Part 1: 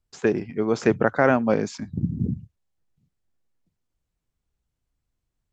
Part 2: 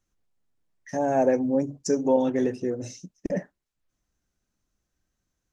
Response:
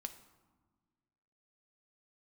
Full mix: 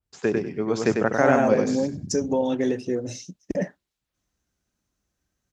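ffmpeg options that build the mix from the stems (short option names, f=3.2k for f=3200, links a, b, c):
-filter_complex "[0:a]adynamicequalizer=threshold=0.01:dfrequency=3700:dqfactor=0.7:tfrequency=3700:tqfactor=0.7:attack=5:release=100:ratio=0.375:range=2:mode=boostabove:tftype=highshelf,volume=-2.5dB,afade=t=out:st=1.65:d=0.44:silence=0.237137,asplit=2[a][b];[b]volume=-4.5dB[c];[1:a]adynamicequalizer=threshold=0.00251:dfrequency=3700:dqfactor=1.2:tfrequency=3700:tqfactor=1.2:attack=5:release=100:ratio=0.375:range=4:mode=boostabove:tftype=bell,alimiter=limit=-16dB:level=0:latency=1:release=216,adelay=250,volume=2dB[d];[c]aecho=0:1:98|196|294:1|0.2|0.04[e];[a][d][e]amix=inputs=3:normalize=0,highpass=42"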